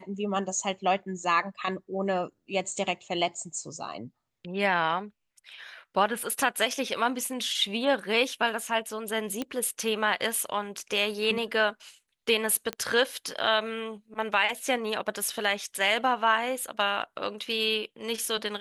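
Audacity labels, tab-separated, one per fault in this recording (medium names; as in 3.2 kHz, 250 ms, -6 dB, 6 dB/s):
9.420000	9.420000	pop -17 dBFS
12.730000	12.730000	pop -17 dBFS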